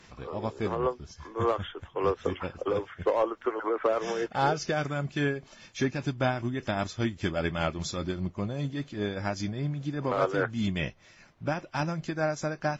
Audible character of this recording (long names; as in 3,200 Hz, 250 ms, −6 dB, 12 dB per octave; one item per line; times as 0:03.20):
tremolo triangle 5 Hz, depth 55%
Ogg Vorbis